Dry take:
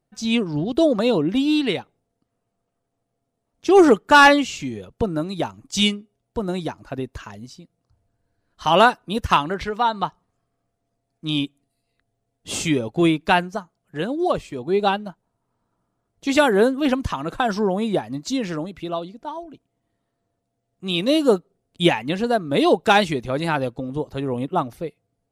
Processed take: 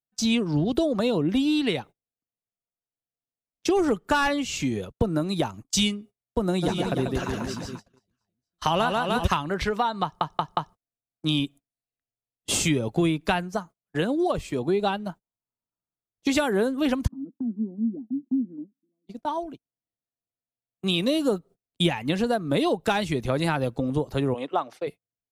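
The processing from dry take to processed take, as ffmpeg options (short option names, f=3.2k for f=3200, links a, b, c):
-filter_complex "[0:a]asplit=3[a][b][c];[a]afade=t=out:st=6.62:d=0.02[d];[b]aecho=1:1:140|301|486.2|699.1|943.9:0.631|0.398|0.251|0.158|0.1,afade=t=in:st=6.62:d=0.02,afade=t=out:st=9.26:d=0.02[e];[c]afade=t=in:st=9.26:d=0.02[f];[d][e][f]amix=inputs=3:normalize=0,asplit=3[g][h][i];[g]afade=t=out:st=17.06:d=0.02[j];[h]asuperpass=centerf=250:order=4:qfactor=4.5,afade=t=in:st=17.06:d=0.02,afade=t=out:st=19.07:d=0.02[k];[i]afade=t=in:st=19.07:d=0.02[l];[j][k][l]amix=inputs=3:normalize=0,asplit=3[m][n][o];[m]afade=t=out:st=24.33:d=0.02[p];[n]highpass=500,lowpass=5.5k,afade=t=in:st=24.33:d=0.02,afade=t=out:st=24.86:d=0.02[q];[o]afade=t=in:st=24.86:d=0.02[r];[p][q][r]amix=inputs=3:normalize=0,asplit=5[s][t][u][v][w];[s]atrim=end=10.212[x];[t]atrim=start=10.028:end=10.212[y];[u]atrim=start=10.028:end=10.212[z];[v]atrim=start=10.028:end=10.212[aa];[w]atrim=start=10.748[ab];[x][y]acrossfade=d=0.004:c1=hsin:c2=hsin[ac];[ac][z]acrossfade=d=0.004:c1=hsin:c2=hsin[ad];[ad][aa]acrossfade=d=0.004:c1=hsin:c2=hsin[ae];[ae][ab]acrossfade=d=0.004:c1=hsin:c2=hsin,agate=range=-30dB:threshold=-40dB:ratio=16:detection=peak,highshelf=f=10k:g=7,acrossover=split=130[af][ag];[ag]acompressor=threshold=-25dB:ratio=6[ah];[af][ah]amix=inputs=2:normalize=0,volume=3.5dB"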